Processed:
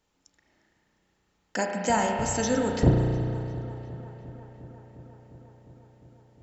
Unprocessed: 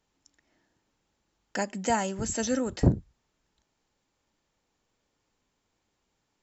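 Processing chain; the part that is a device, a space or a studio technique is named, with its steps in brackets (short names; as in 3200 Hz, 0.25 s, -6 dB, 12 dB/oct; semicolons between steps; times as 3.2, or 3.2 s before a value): dub delay into a spring reverb (darkening echo 0.354 s, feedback 78%, low-pass 4300 Hz, level -18 dB; spring tank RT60 2.6 s, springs 33 ms, chirp 20 ms, DRR 0.5 dB); gain +1.5 dB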